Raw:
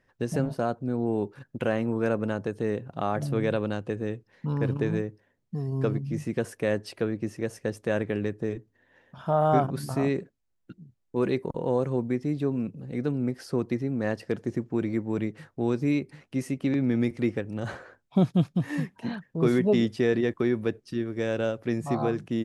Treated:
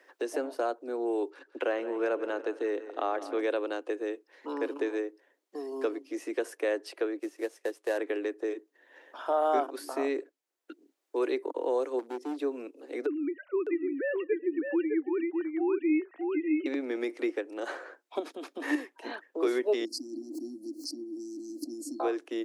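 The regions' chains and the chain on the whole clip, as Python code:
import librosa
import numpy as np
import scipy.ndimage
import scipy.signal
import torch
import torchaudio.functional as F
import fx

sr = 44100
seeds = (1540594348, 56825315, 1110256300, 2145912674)

y = fx.chain(x, sr, fx.air_absorb(metres=62.0),
    fx.echo_feedback(ms=167, feedback_pct=55, wet_db=-15.0), at=(1.3, 3.41))
y = fx.chain(y, sr, fx.cvsd(bps=64000),
    fx.upward_expand(threshold_db=-45.0, expansion=1.5), at=(7.19, 7.98))
y = fx.chain(y, sr, fx.peak_eq(hz=2000.0, db=-13.0, octaves=1.6),
    fx.clip_hard(threshold_db=-28.0), at=(11.99, 12.39))
y = fx.chain(y, sr, fx.sine_speech(),
    fx.echo_single(ms=606, db=-5.0), at=(13.06, 16.66))
y = fx.chain(y, sr, fx.bass_treble(bass_db=11, treble_db=-2),
    fx.over_compress(threshold_db=-20.0, ratio=-1.0), at=(18.19, 18.75))
y = fx.chain(y, sr, fx.brickwall_bandstop(low_hz=330.0, high_hz=4100.0),
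    fx.pre_swell(db_per_s=28.0), at=(19.85, 22.0))
y = scipy.signal.sosfilt(scipy.signal.butter(12, 290.0, 'highpass', fs=sr, output='sos'), y)
y = fx.band_squash(y, sr, depth_pct=40)
y = y * 10.0 ** (-1.5 / 20.0)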